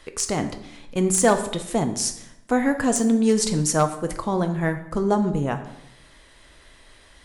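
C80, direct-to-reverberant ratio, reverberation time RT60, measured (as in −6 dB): 13.5 dB, 7.0 dB, 0.80 s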